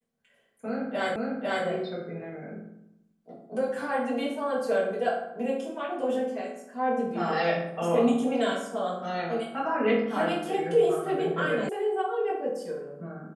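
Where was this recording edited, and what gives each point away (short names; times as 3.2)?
1.16 repeat of the last 0.5 s
11.69 sound cut off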